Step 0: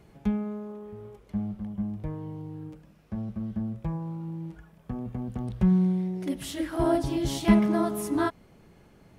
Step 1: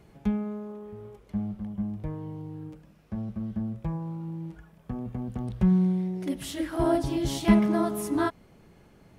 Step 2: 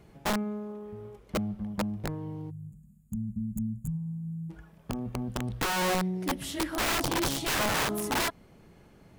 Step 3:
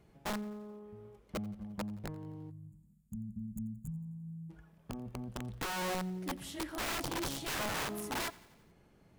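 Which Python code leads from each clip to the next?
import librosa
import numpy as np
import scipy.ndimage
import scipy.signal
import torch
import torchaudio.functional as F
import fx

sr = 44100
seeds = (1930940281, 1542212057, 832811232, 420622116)

y1 = x
y2 = (np.mod(10.0 ** (23.0 / 20.0) * y1 + 1.0, 2.0) - 1.0) / 10.0 ** (23.0 / 20.0)
y2 = fx.spec_box(y2, sr, start_s=2.5, length_s=2.0, low_hz=250.0, high_hz=6600.0, gain_db=-30)
y3 = fx.echo_feedback(y2, sr, ms=87, feedback_pct=60, wet_db=-21)
y3 = y3 * 10.0 ** (-8.5 / 20.0)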